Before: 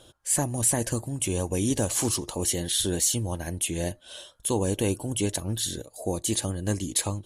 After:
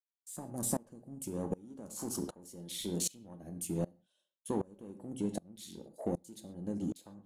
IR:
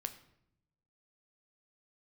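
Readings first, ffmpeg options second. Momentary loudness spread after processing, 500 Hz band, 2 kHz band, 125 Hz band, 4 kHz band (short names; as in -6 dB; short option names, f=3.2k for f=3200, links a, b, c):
14 LU, -10.5 dB, -20.5 dB, -14.0 dB, -16.0 dB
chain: -filter_complex "[0:a]afwtdn=0.02,agate=range=-33dB:threshold=-50dB:ratio=3:detection=peak,lowshelf=f=140:t=q:w=3:g=-7,acrossover=split=4300[a][b];[b]alimiter=limit=-20dB:level=0:latency=1:release=168[c];[a][c]amix=inputs=2:normalize=0,acompressor=threshold=-28dB:ratio=3,asplit=2[d][e];[e]asoftclip=type=tanh:threshold=-34.5dB,volume=-6dB[f];[d][f]amix=inputs=2:normalize=0[g];[1:a]atrim=start_sample=2205,afade=t=out:st=0.19:d=0.01,atrim=end_sample=8820[h];[g][h]afir=irnorm=-1:irlink=0,aeval=exprs='val(0)*pow(10,-26*if(lt(mod(-1.3*n/s,1),2*abs(-1.3)/1000),1-mod(-1.3*n/s,1)/(2*abs(-1.3)/1000),(mod(-1.3*n/s,1)-2*abs(-1.3)/1000)/(1-2*abs(-1.3)/1000))/20)':c=same"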